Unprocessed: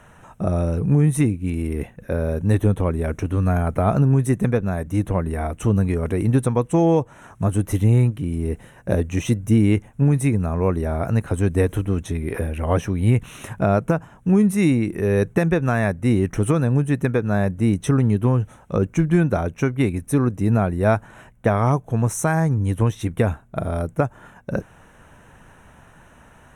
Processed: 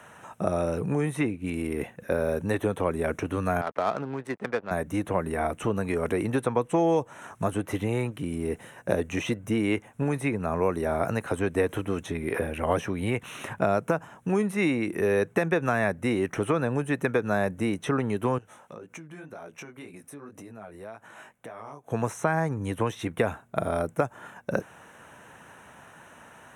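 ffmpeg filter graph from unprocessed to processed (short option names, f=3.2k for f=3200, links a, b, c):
-filter_complex "[0:a]asettb=1/sr,asplit=3[a][b][c];[a]atrim=end=3.614[d];[b]atrim=start=3.61:end=4.71,asetpts=PTS-STARTPTS,afade=t=in:d=0.004:c=qsin,afade=t=out:st=1.096:d=0.004:c=qsin,highpass=f=820:p=1,aeval=exprs='sgn(val(0))*max(abs(val(0))-0.00473,0)':c=same,adynamicsmooth=sensitivity=3.5:basefreq=1.6k[e];[c]atrim=start=4.706[f];[d][e]acrossfade=d=0.004:c1=hsin:c2=qsin[g];[g][f]acrossfade=d=0.004:c1=qsin:c2=hsin,asettb=1/sr,asplit=3[h][i][j];[h]atrim=end=18.384[k];[i]atrim=start=18.38:end=21.92,asetpts=PTS-STARTPTS,afade=t=in:d=0.004:c=qsin,afade=t=out:st=3.536:d=0.004:c=qsin,lowshelf=f=150:g=-11.5,flanger=delay=16.5:depth=4.7:speed=1.9,acompressor=threshold=-37dB:ratio=12:attack=3.2:release=140:knee=1:detection=peak[l];[j]atrim=start=21.916[m];[k][l]acrossfade=d=0.004:c1=hsin:c2=qsin[n];[n][m]acrossfade=d=0.004:c1=qsin:c2=hsin,highpass=88,lowshelf=f=220:g=-11,acrossover=split=350|3700[o][p][q];[o]acompressor=threshold=-31dB:ratio=4[r];[p]acompressor=threshold=-24dB:ratio=4[s];[q]acompressor=threshold=-50dB:ratio=4[t];[r][s][t]amix=inputs=3:normalize=0,volume=2dB"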